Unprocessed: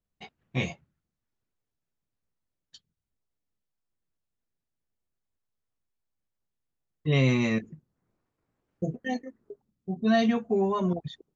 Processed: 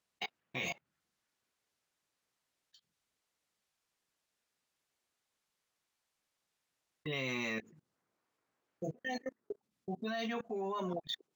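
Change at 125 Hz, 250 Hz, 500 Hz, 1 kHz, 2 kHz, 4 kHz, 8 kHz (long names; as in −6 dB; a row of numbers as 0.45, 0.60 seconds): −18.5 dB, −15.0 dB, −11.0 dB, −8.5 dB, −5.5 dB, −4.0 dB, can't be measured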